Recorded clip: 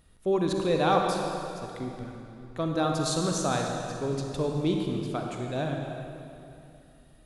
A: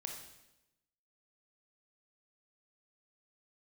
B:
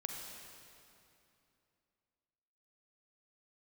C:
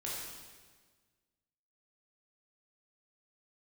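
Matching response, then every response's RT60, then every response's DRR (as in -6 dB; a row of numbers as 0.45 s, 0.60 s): B; 0.95 s, 2.8 s, 1.5 s; 2.0 dB, 1.0 dB, -6.0 dB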